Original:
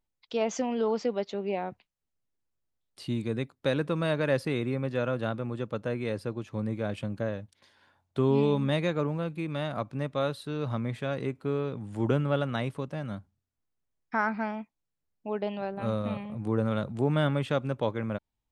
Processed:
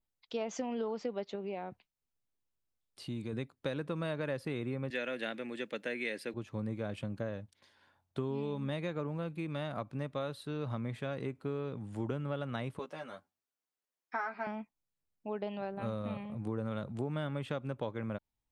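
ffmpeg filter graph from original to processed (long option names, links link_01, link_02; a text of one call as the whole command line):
ffmpeg -i in.wav -filter_complex "[0:a]asettb=1/sr,asplit=3[link_01][link_02][link_03];[link_01]atrim=end=1.354[link_04];[link_02]atrim=start=1.35:end=3.33,asetpts=PTS-STARTPTS,afade=type=in:duration=0.004:curve=qsin,afade=type=out:start_time=1.976:duration=0.004:curve=qsin,bandreject=frequency=1900:width=27,acompressor=threshold=-33dB:ratio=2:attack=3.2:release=140:knee=1:detection=peak[link_05];[link_03]atrim=start=3.326[link_06];[link_04][link_05]acrossfade=duration=0.004:curve1=hsin:curve2=qsin[link_07];[link_07][link_06]acrossfade=duration=0.004:curve1=qsin:curve2=hsin,asettb=1/sr,asplit=3[link_08][link_09][link_10];[link_08]atrim=end=4.904[link_11];[link_09]atrim=start=4.9:end=6.34,asetpts=PTS-STARTPTS,afade=type=in:duration=0.004:curve=qsin,afade=type=out:start_time=1.436:duration=0.004:curve=qsin,highpass=frequency=220:width=0.5412,highpass=frequency=220:width=1.3066,highshelf=frequency=1500:width_type=q:width=3:gain=7.5[link_12];[link_10]atrim=start=6.336[link_13];[link_11][link_12]acrossfade=duration=0.004:curve1=hsin:curve2=qsin[link_14];[link_14][link_13]acrossfade=duration=0.004:curve1=qsin:curve2=hsin,asettb=1/sr,asplit=3[link_15][link_16][link_17];[link_15]atrim=end=12.794[link_18];[link_16]atrim=start=12.79:end=14.47,asetpts=PTS-STARTPTS,afade=type=in:duration=0.004:curve=qsin,afade=type=out:start_time=1.676:duration=0.004:curve=qsin,highpass=420,asplit=2[link_19][link_20];[link_20]adelay=12,volume=-3.5dB[link_21];[link_19][link_21]amix=inputs=2:normalize=0,atrim=end_sample=74088[link_22];[link_17]atrim=start=14.466[link_23];[link_18][link_22]acrossfade=duration=0.004:curve1=hsin:curve2=qsin[link_24];[link_24][link_23]acrossfade=duration=0.004:curve1=qsin:curve2=hsin,adynamicequalizer=threshold=0.00178:dfrequency=5700:dqfactor=1.4:tfrequency=5700:tqfactor=1.4:attack=5:release=100:ratio=0.375:range=2:mode=cutabove:tftype=bell,acompressor=threshold=-28dB:ratio=6,volume=-4dB" out.wav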